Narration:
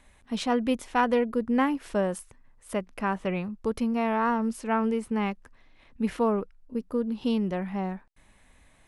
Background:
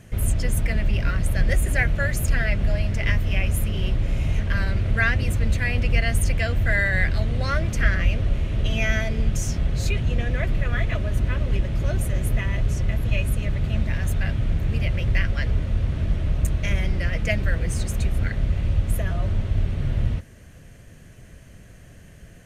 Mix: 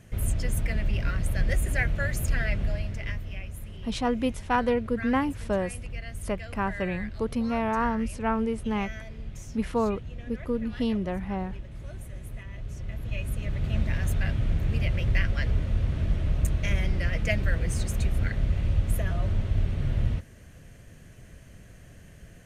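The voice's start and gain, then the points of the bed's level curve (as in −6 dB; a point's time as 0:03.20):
3.55 s, −1.0 dB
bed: 0:02.57 −5 dB
0:03.52 −16.5 dB
0:12.46 −16.5 dB
0:13.79 −3 dB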